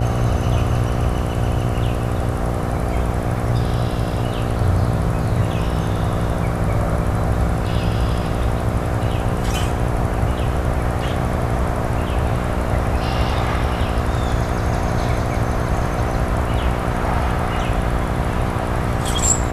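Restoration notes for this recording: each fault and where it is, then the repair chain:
buzz 60 Hz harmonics 13 -24 dBFS
3.34 gap 3.7 ms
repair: de-hum 60 Hz, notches 13; interpolate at 3.34, 3.7 ms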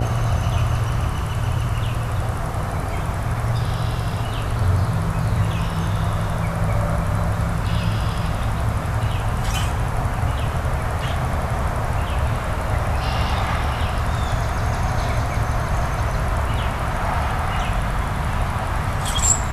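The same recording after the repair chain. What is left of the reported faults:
none

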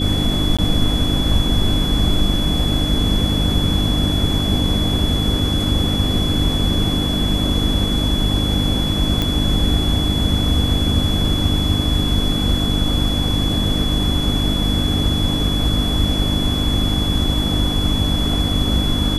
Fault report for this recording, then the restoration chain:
hum 50 Hz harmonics 6 -22 dBFS
tone 3400 Hz -23 dBFS
0.57–0.59 gap 16 ms
9.22 pop -6 dBFS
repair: de-click; notch 3400 Hz, Q 30; de-hum 50 Hz, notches 6; interpolate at 0.57, 16 ms

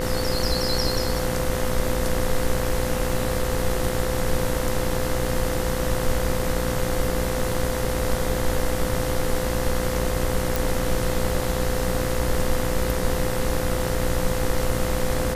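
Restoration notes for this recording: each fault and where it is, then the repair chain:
buzz 60 Hz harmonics 35 -28 dBFS
tone 510 Hz -28 dBFS
10.56 pop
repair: de-click; notch 510 Hz, Q 30; de-hum 60 Hz, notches 35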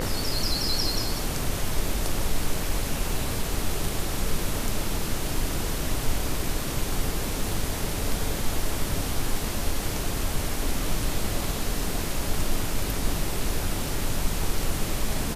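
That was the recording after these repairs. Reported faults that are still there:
none

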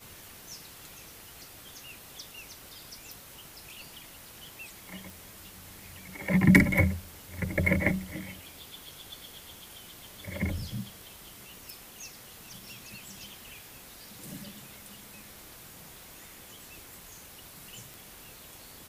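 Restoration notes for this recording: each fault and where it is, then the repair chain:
5.1 pop
17.94 pop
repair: de-click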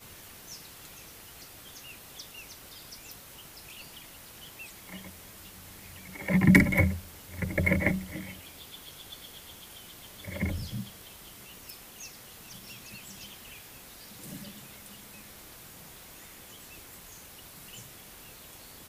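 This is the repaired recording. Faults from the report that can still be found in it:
none

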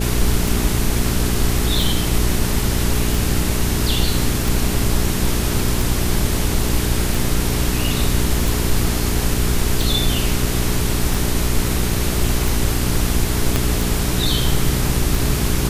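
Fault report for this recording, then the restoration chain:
hum 60 Hz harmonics 7 -22 dBFS
tick 45 rpm
13.56 pop -2 dBFS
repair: de-click; de-hum 60 Hz, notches 7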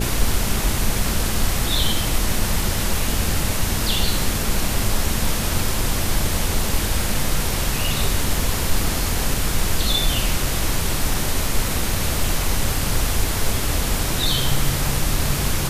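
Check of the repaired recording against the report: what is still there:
13.56 pop

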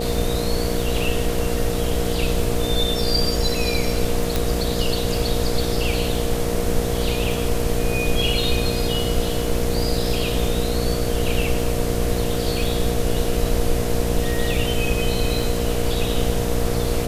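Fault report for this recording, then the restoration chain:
buzz 60 Hz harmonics 12 -25 dBFS
crackle 30/s -28 dBFS
tone 470 Hz -27 dBFS
4.36 pop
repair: de-click; notch 470 Hz, Q 30; de-hum 60 Hz, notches 12

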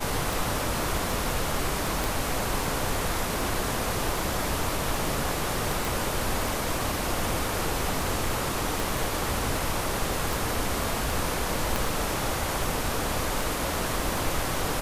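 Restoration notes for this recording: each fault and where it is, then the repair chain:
tick 78 rpm
2.04 pop
5.85 pop
8.8 pop
11.76 pop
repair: de-click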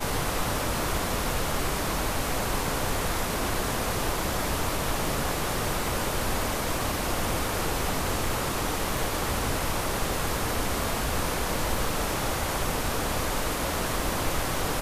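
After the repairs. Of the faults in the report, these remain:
8.8 pop
11.76 pop

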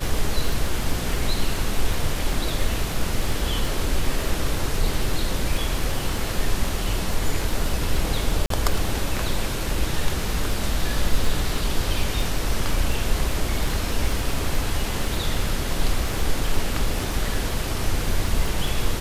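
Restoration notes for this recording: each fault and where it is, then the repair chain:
crackle 22/s -25 dBFS
8.46–8.5 gap 43 ms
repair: de-click; interpolate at 8.46, 43 ms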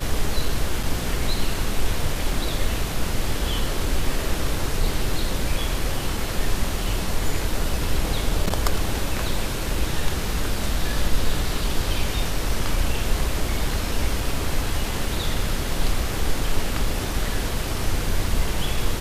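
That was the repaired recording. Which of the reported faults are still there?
none

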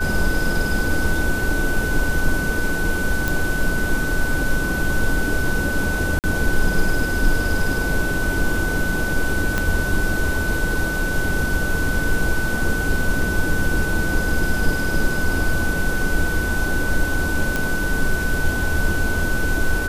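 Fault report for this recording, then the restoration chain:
tone 1500 Hz -24 dBFS
3.28 pop
6.19–6.24 gap 48 ms
9.58 pop -6 dBFS
17.56 pop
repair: de-click; notch 1500 Hz, Q 30; interpolate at 6.19, 48 ms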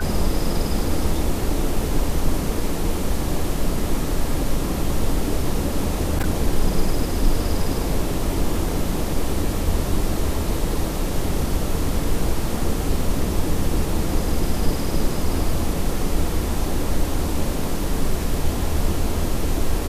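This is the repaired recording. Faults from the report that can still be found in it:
9.58 pop

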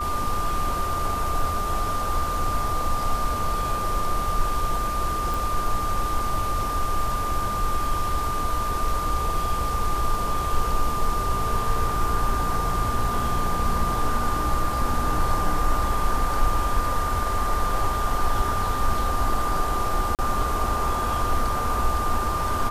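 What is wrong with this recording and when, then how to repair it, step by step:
tone 1200 Hz -26 dBFS
5.34 pop
20.15–20.19 gap 38 ms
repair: de-click; notch 1200 Hz, Q 30; interpolate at 20.15, 38 ms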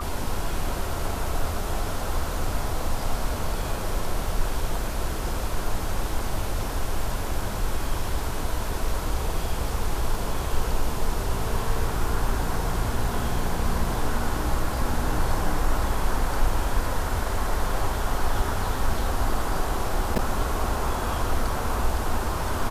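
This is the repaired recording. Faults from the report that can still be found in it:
none

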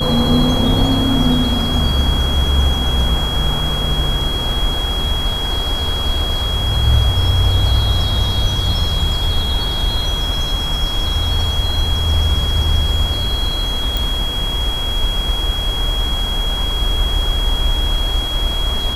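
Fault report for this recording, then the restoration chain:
tone 3300 Hz -21 dBFS
13.97 pop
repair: de-click; notch 3300 Hz, Q 30

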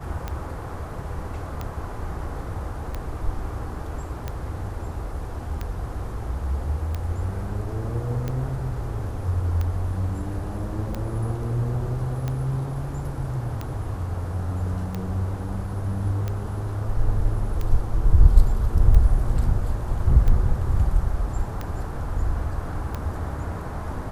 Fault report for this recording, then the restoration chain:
tick 45 rpm -16 dBFS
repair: de-click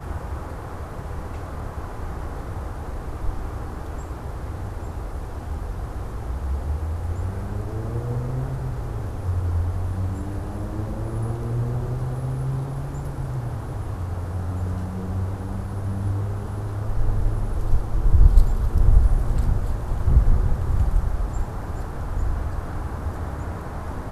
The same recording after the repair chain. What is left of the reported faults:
none

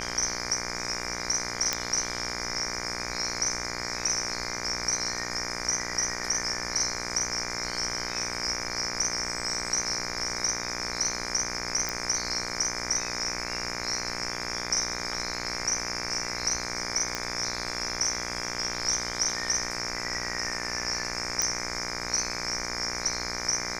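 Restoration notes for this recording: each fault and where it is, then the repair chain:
buzz 60 Hz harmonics 40 -36 dBFS
1.73 pop -9 dBFS
11.89 pop
17.15 pop -14 dBFS
21.42 pop -10 dBFS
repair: de-click; de-hum 60 Hz, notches 40

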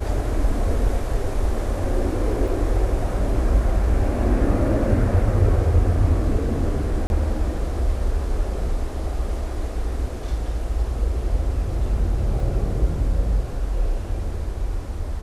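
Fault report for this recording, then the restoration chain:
2.48 gap 2.3 ms
7.07–7.1 gap 31 ms
12.4 gap 2.5 ms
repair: interpolate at 2.48, 2.3 ms; interpolate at 7.07, 31 ms; interpolate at 12.4, 2.5 ms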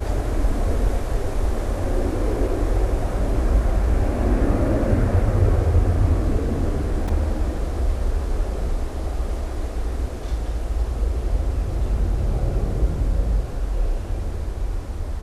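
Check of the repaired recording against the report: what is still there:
none

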